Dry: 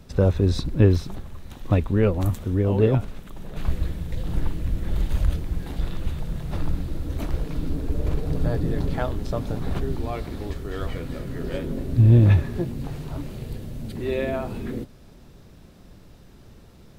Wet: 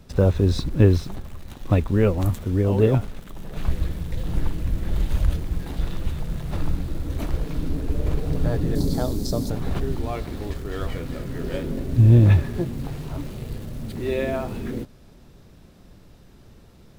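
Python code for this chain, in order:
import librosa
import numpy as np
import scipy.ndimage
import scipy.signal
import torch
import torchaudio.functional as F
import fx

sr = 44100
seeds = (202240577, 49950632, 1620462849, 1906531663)

p1 = fx.curve_eq(x, sr, hz=(100.0, 270.0, 2700.0, 4400.0), db=(0, 6, -13, 12), at=(8.75, 9.5))
p2 = fx.quant_dither(p1, sr, seeds[0], bits=6, dither='none')
p3 = p1 + (p2 * 10.0 ** (-12.0 / 20.0))
y = p3 * 10.0 ** (-1.0 / 20.0)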